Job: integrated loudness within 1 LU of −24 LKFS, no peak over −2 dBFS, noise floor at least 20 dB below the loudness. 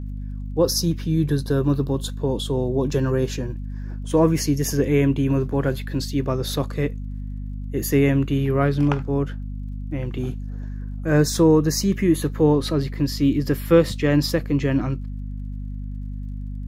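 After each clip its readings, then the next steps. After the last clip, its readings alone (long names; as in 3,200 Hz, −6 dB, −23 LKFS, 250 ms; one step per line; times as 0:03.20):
crackle rate 45 per second; mains hum 50 Hz; hum harmonics up to 250 Hz; level of the hum −28 dBFS; integrated loudness −21.5 LKFS; sample peak −3.5 dBFS; target loudness −24.0 LKFS
→ click removal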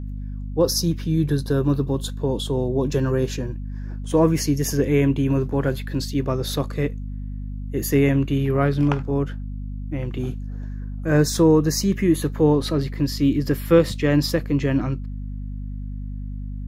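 crackle rate 0.18 per second; mains hum 50 Hz; hum harmonics up to 250 Hz; level of the hum −28 dBFS
→ hum removal 50 Hz, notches 5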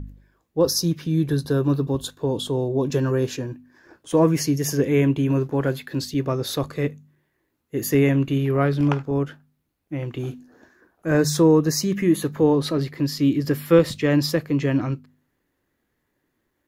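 mains hum none found; integrated loudness −22.0 LKFS; sample peak −4.0 dBFS; target loudness −24.0 LKFS
→ level −2 dB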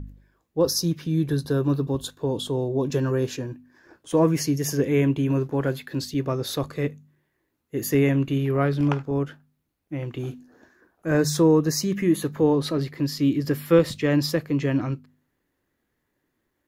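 integrated loudness −24.0 LKFS; sample peak −6.0 dBFS; background noise floor −76 dBFS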